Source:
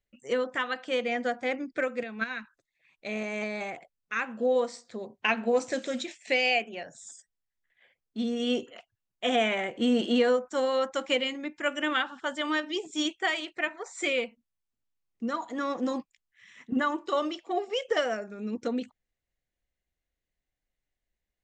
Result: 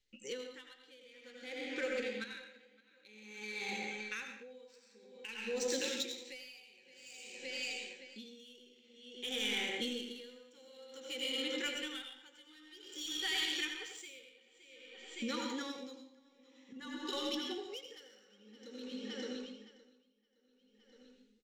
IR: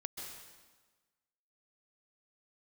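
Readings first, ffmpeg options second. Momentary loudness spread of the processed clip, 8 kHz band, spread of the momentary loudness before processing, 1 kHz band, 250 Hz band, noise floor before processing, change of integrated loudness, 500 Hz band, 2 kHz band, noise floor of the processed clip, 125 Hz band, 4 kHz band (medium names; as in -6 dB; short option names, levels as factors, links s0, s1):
21 LU, -1.0 dB, 11 LU, -18.0 dB, -13.5 dB, under -85 dBFS, -10.0 dB, -15.0 dB, -11.0 dB, -69 dBFS, no reading, -4.5 dB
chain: -filter_complex "[0:a]lowpass=5700,aecho=1:1:566|1132|1698|2264|2830:0.224|0.103|0.0474|0.0218|0.01,acrossover=split=2900[s0][s1];[s1]crystalizer=i=8:c=0[s2];[s0][s2]amix=inputs=2:normalize=0,equalizer=f=74:w=0.33:g=-10,asplit=2[s3][s4];[s4]asoftclip=type=hard:threshold=0.075,volume=0.668[s5];[s3][s5]amix=inputs=2:normalize=0,asplit=2[s6][s7];[s7]adelay=19,volume=0.237[s8];[s6][s8]amix=inputs=2:normalize=0[s9];[1:a]atrim=start_sample=2205,asetrate=74970,aresample=44100[s10];[s9][s10]afir=irnorm=-1:irlink=0,adynamicsmooth=sensitivity=5:basefreq=4300,equalizer=f=1100:w=1.6:g=-11.5,acompressor=threshold=0.00447:ratio=2.5,asuperstop=centerf=650:order=12:qfactor=3.3,aeval=exprs='val(0)*pow(10,-25*(0.5-0.5*cos(2*PI*0.52*n/s))/20)':c=same,volume=2.99"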